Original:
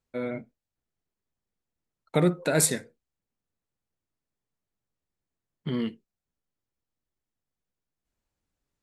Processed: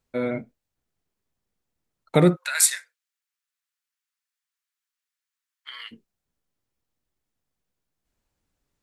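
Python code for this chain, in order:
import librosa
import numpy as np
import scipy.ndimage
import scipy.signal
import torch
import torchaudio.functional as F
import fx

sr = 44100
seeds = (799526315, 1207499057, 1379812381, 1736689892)

y = fx.highpass(x, sr, hz=1300.0, slope=24, at=(2.35, 5.91), fade=0.02)
y = y * librosa.db_to_amplitude(5.5)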